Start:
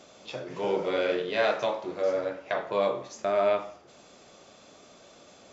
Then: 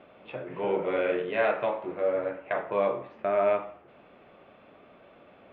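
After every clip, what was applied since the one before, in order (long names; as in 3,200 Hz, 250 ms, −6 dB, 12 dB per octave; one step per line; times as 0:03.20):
Butterworth low-pass 2,800 Hz 36 dB per octave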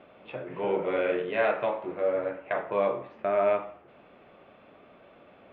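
no processing that can be heard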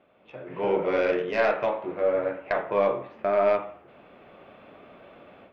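stylus tracing distortion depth 0.047 ms
automatic gain control gain up to 14 dB
level −9 dB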